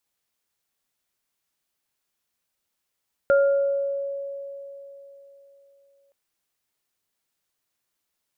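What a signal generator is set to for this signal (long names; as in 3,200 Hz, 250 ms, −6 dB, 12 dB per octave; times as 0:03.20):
inharmonic partials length 2.82 s, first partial 557 Hz, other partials 1,400 Hz, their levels −7.5 dB, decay 3.61 s, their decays 0.83 s, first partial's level −14 dB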